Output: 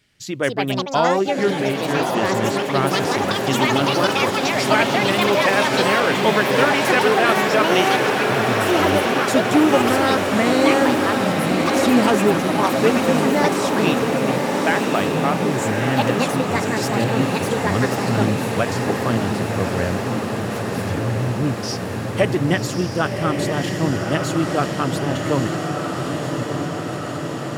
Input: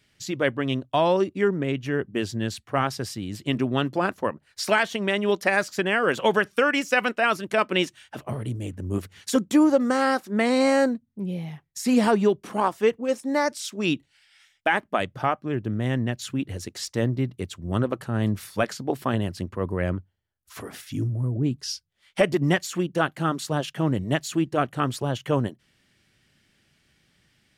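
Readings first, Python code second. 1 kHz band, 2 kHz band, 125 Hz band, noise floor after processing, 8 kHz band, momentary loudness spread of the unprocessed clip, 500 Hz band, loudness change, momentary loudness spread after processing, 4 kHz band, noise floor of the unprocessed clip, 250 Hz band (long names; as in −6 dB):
+8.5 dB, +7.0 dB, +5.5 dB, −26 dBFS, +8.0 dB, 11 LU, +6.5 dB, +6.0 dB, 8 LU, +9.0 dB, −67 dBFS, +6.0 dB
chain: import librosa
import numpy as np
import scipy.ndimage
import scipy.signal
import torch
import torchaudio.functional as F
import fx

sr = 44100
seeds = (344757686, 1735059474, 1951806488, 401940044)

y = fx.echo_pitch(x, sr, ms=287, semitones=6, count=2, db_per_echo=-3.0)
y = fx.echo_diffused(y, sr, ms=1143, feedback_pct=74, wet_db=-3.5)
y = F.gain(torch.from_numpy(y), 2.0).numpy()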